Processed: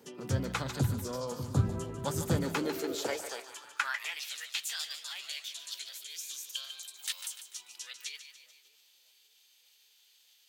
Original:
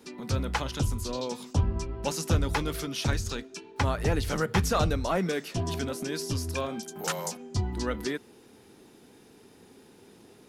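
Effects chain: split-band echo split 530 Hz, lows 0.588 s, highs 0.147 s, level -10.5 dB; formant shift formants +4 st; high-pass sweep 120 Hz -> 3300 Hz, 2.22–4.32; gain -5 dB

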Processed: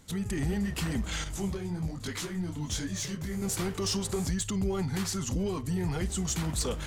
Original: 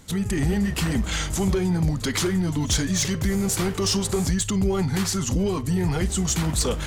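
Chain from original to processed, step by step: 1.24–3.42 detuned doubles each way 41 cents; gain -7.5 dB

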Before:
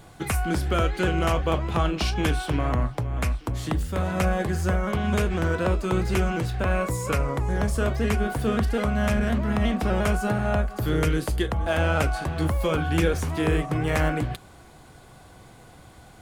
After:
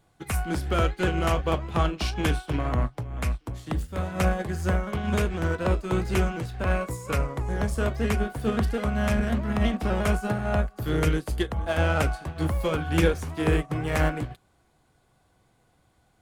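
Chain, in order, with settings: in parallel at -3 dB: soft clip -25.5 dBFS, distortion -9 dB; on the sum: upward expander 2.5:1, over -31 dBFS

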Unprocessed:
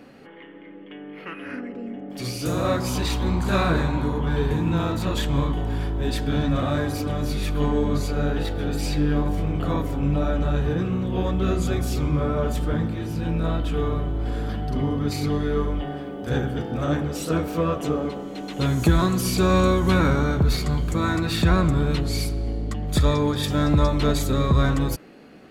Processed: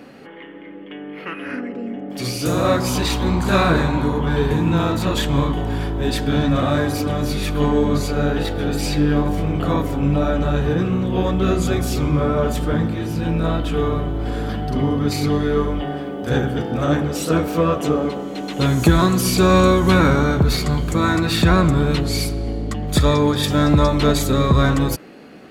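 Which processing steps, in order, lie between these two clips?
low shelf 71 Hz -8 dB; gain +6 dB

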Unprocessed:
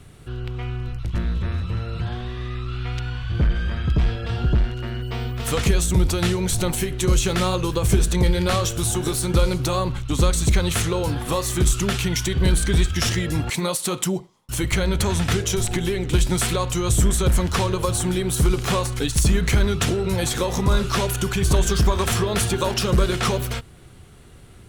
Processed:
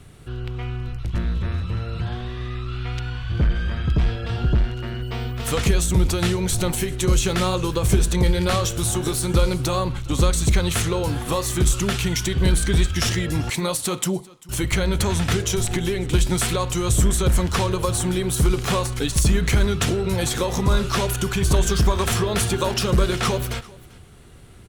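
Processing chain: echo 0.393 s -22.5 dB

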